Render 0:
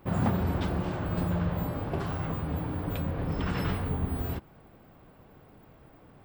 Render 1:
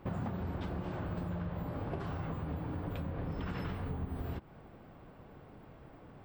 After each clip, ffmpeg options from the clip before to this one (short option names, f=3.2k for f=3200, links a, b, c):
-af "lowpass=f=4k:p=1,acompressor=threshold=-36dB:ratio=6,volume=1dB"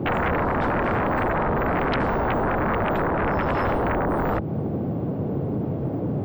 -filter_complex "[0:a]highpass=f=93:w=0.5412,highpass=f=93:w=1.3066,acrossover=split=590|4000[a][b][c];[a]aeval=exprs='0.0398*sin(PI/2*8.91*val(0)/0.0398)':c=same[d];[d][b][c]amix=inputs=3:normalize=0,volume=8.5dB"